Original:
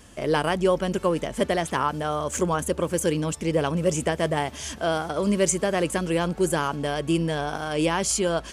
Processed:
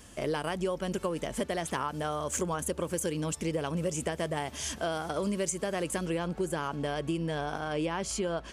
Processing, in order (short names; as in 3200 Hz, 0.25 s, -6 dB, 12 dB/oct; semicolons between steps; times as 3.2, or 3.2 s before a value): high shelf 5100 Hz +4 dB, from 6.06 s -4.5 dB, from 7.59 s -10.5 dB; compressor, threshold -25 dBFS, peak gain reduction 9.5 dB; gain -3 dB